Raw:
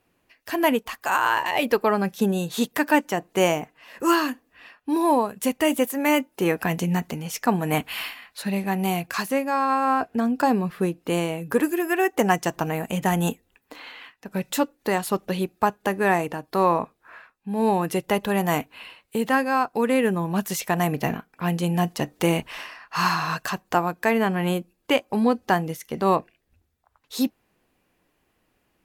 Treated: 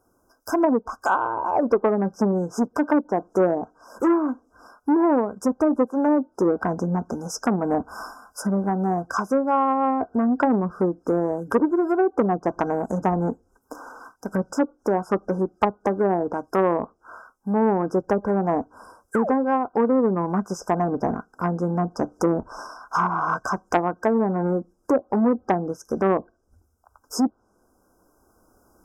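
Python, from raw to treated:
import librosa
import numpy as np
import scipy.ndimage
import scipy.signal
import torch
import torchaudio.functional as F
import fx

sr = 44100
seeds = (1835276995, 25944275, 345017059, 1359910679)

y = fx.recorder_agc(x, sr, target_db=-14.5, rise_db_per_s=5.0, max_gain_db=30)
y = fx.spec_paint(y, sr, seeds[0], shape='fall', start_s=19.09, length_s=0.23, low_hz=400.0, high_hz=2400.0, level_db=-31.0)
y = fx.env_lowpass_down(y, sr, base_hz=590.0, full_db=-16.5)
y = fx.brickwall_bandstop(y, sr, low_hz=1600.0, high_hz=4900.0)
y = fx.peak_eq(y, sr, hz=150.0, db=-14.5, octaves=0.32)
y = fx.transformer_sat(y, sr, knee_hz=860.0)
y = F.gain(torch.from_numpy(y), 4.5).numpy()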